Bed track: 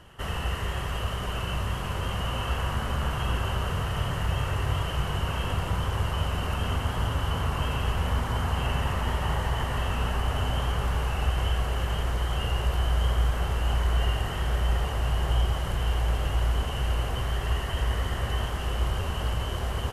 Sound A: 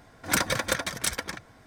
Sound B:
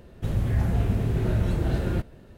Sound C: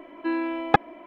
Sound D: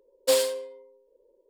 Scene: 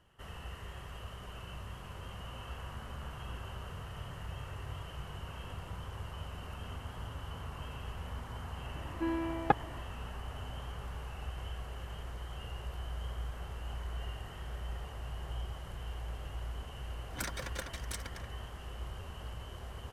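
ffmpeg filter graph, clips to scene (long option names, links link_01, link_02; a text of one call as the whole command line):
ffmpeg -i bed.wav -i cue0.wav -i cue1.wav -i cue2.wav -filter_complex "[0:a]volume=-15.5dB[link_01];[3:a]highshelf=frequency=2100:gain=-10,atrim=end=1.06,asetpts=PTS-STARTPTS,volume=-7dB,afade=type=in:duration=0.004:curve=hsin,afade=type=out:start_time=1.056:duration=0.004:curve=hsin,adelay=8760[link_02];[1:a]atrim=end=1.66,asetpts=PTS-STARTPTS,volume=-15dB,afade=type=in:duration=0.004:curve=hsin,afade=type=out:start_time=1.656:duration=0.004:curve=hsin,adelay=16870[link_03];[link_01][link_02][link_03]amix=inputs=3:normalize=0" out.wav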